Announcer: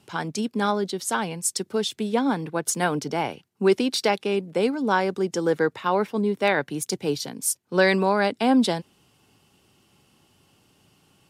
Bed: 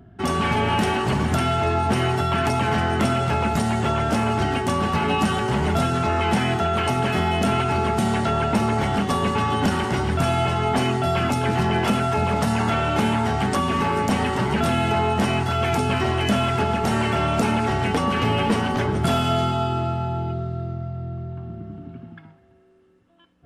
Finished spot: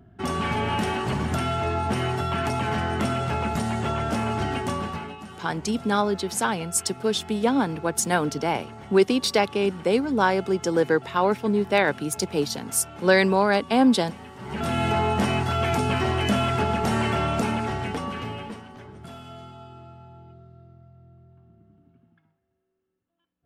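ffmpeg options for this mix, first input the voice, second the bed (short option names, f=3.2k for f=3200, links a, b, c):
-filter_complex "[0:a]adelay=5300,volume=1dB[a];[1:a]volume=13.5dB,afade=t=out:st=4.66:d=0.5:silence=0.16788,afade=t=in:st=14.39:d=0.46:silence=0.125893,afade=t=out:st=17.07:d=1.57:silence=0.112202[b];[a][b]amix=inputs=2:normalize=0"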